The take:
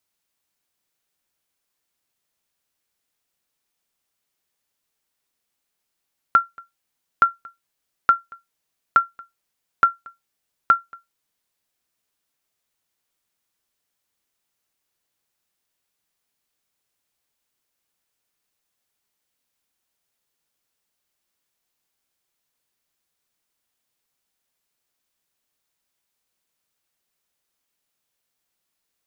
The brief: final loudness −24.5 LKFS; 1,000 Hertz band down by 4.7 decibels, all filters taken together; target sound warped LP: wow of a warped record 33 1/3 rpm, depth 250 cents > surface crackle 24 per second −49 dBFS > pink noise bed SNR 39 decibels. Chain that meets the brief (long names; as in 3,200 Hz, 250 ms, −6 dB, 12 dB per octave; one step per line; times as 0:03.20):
parametric band 1,000 Hz −8.5 dB
wow of a warped record 33 1/3 rpm, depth 250 cents
surface crackle 24 per second −49 dBFS
pink noise bed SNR 39 dB
level +2.5 dB